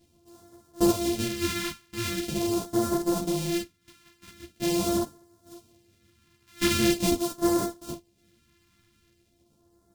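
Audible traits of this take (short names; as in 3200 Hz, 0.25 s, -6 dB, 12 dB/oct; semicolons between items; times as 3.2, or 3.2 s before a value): a buzz of ramps at a fixed pitch in blocks of 128 samples; phasing stages 2, 0.43 Hz, lowest notch 580–2400 Hz; random-step tremolo 1.1 Hz, depth 65%; a shimmering, thickened sound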